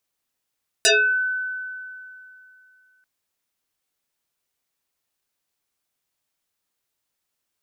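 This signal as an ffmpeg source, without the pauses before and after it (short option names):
-f lavfi -i "aevalsrc='0.251*pow(10,-3*t/2.75)*sin(2*PI*1510*t+8.2*pow(10,-3*t/0.36)*sin(2*PI*0.72*1510*t))':d=2.19:s=44100"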